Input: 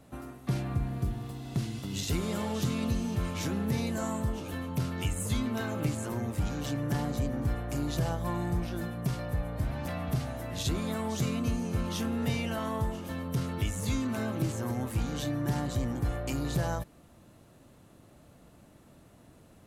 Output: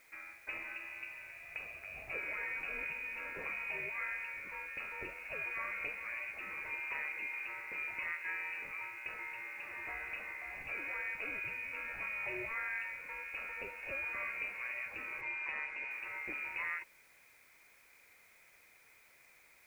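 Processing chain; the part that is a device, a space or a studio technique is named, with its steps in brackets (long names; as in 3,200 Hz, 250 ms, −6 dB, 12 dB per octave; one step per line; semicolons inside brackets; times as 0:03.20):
scrambled radio voice (band-pass filter 310–2,900 Hz; voice inversion scrambler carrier 2,700 Hz; white noise bed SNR 26 dB)
0:15.21–0:15.91: Bessel low-pass filter 5,800 Hz, order 2
parametric band 520 Hz +5.5 dB 0.89 octaves
level −4 dB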